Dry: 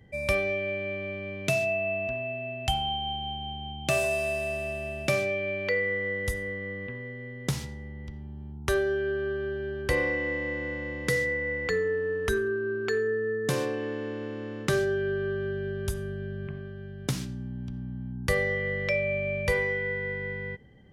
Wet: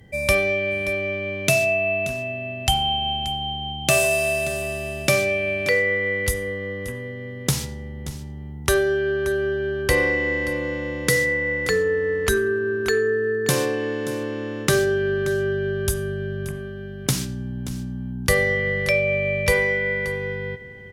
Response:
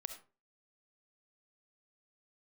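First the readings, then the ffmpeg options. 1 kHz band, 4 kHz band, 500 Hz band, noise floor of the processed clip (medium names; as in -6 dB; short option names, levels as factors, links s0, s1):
+6.5 dB, +9.5 dB, +6.5 dB, -34 dBFS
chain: -filter_complex "[0:a]aemphasis=mode=production:type=cd,asplit=2[s0][s1];[s1]aecho=0:1:579:0.178[s2];[s0][s2]amix=inputs=2:normalize=0,volume=2.11"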